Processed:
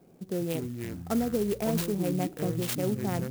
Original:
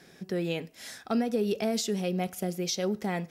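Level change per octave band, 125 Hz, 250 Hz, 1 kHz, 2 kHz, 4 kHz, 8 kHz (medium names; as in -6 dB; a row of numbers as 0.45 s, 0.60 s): +4.5 dB, +1.0 dB, -1.5 dB, -3.0 dB, -5.5 dB, -2.5 dB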